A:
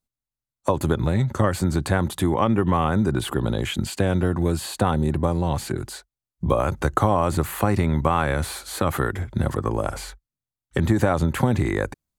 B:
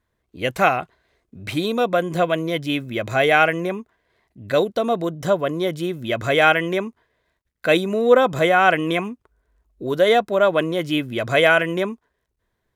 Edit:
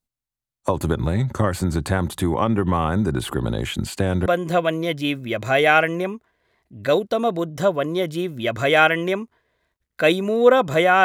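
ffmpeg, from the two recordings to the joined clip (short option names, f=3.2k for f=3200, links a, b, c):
-filter_complex "[0:a]apad=whole_dur=11.04,atrim=end=11.04,atrim=end=4.262[a];[1:a]atrim=start=1.908:end=8.69[b];[a][b]acrossfade=d=0.004:c1=hsin:c2=hsin"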